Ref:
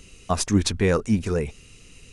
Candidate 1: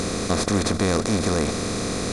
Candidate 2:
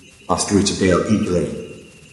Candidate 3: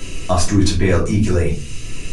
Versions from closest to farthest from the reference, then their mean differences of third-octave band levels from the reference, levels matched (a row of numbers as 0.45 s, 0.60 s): 2, 3, 1; 5.5 dB, 7.0 dB, 15.0 dB